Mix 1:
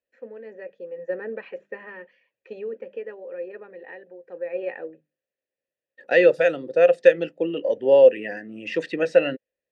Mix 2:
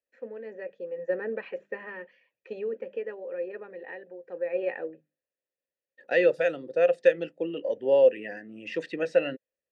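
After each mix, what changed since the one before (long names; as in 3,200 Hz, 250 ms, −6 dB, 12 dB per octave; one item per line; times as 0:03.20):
second voice −6.0 dB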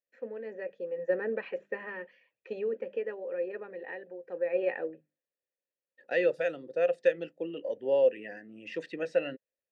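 second voice −5.0 dB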